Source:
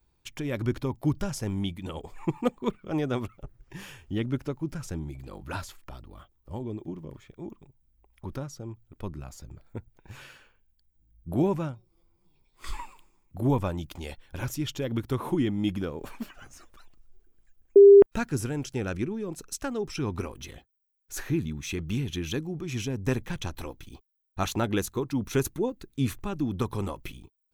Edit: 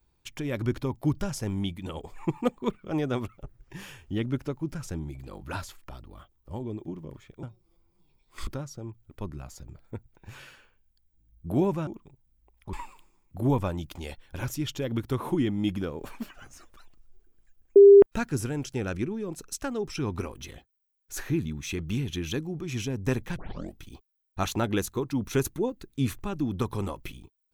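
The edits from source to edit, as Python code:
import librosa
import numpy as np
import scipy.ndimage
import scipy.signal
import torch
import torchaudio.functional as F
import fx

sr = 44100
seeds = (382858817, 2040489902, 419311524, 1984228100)

y = fx.edit(x, sr, fx.swap(start_s=7.43, length_s=0.86, other_s=11.69, other_length_s=1.04),
    fx.tape_start(start_s=23.37, length_s=0.45), tone=tone)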